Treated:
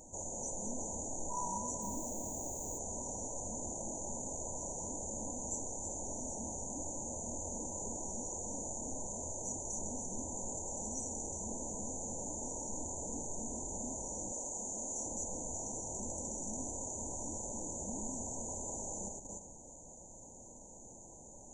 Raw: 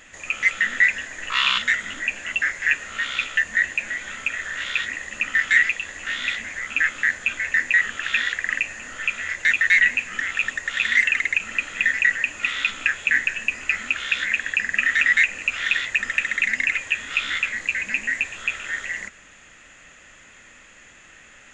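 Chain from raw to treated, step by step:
feedback delay that plays each chunk backwards 190 ms, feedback 49%, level −7 dB
brick-wall band-stop 1,000–5,800 Hz
in parallel at 0 dB: output level in coarse steps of 17 dB
0:01.81–0:02.77: on the sum: background noise violet −57 dBFS
0:14.32–0:15.06: bass and treble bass −10 dB, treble +2 dB
level −1.5 dB

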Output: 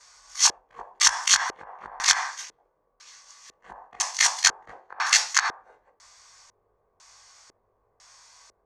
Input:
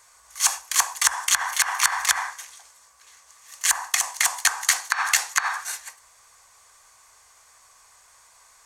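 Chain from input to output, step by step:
every overlapping window played backwards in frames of 42 ms
auto-filter low-pass square 1 Hz 420–5,400 Hz
level +2.5 dB

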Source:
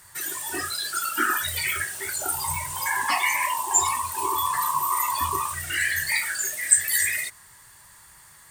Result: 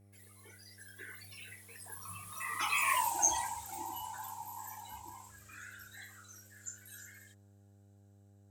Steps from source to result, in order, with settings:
source passing by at 0:02.98, 55 m/s, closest 11 metres
hum with harmonics 100 Hz, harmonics 8, −57 dBFS −8 dB per octave
level −4.5 dB

